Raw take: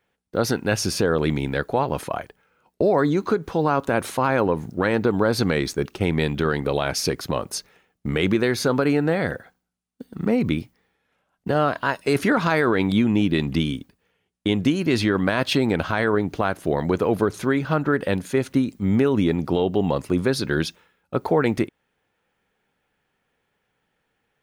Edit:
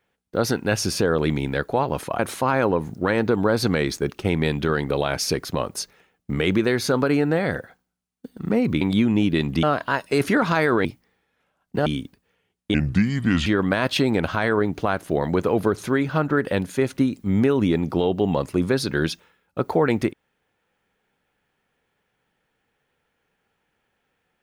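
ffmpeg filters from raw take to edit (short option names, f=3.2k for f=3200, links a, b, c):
-filter_complex "[0:a]asplit=8[a][b][c][d][e][f][g][h];[a]atrim=end=2.192[i];[b]atrim=start=3.948:end=10.572[j];[c]atrim=start=12.798:end=13.622[k];[d]atrim=start=11.578:end=12.802[l];[e]atrim=start=10.568:end=11.582[m];[f]atrim=start=13.618:end=14.504[n];[g]atrim=start=14.5:end=15.02,asetpts=PTS-STARTPTS,asetrate=31752,aresample=44100[o];[h]atrim=start=15.016[p];[i][j]acrossfade=d=0.004:c1=hsin:c2=hsin[q];[q][k]acrossfade=d=0.004:c1=hsin:c2=hsin[r];[r][l]acrossfade=d=0.004:c1=hsin:c2=hsin[s];[s][m]acrossfade=d=0.004:c1=hsin:c2=hsin[t];[t][n]acrossfade=d=0.004:c1=hsin:c2=hsin[u];[u][o]acrossfade=d=0.004:c1=hsin:c2=hsin[v];[v][p]acrossfade=d=0.004:c1=hsin:c2=hsin"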